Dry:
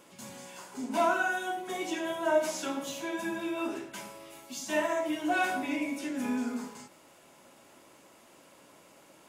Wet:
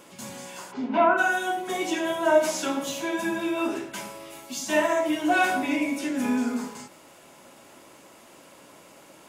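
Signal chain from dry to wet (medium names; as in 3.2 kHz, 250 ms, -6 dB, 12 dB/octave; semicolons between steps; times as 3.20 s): 0.71–1.17 s: low-pass 5.1 kHz -> 2.1 kHz 24 dB/octave; trim +6.5 dB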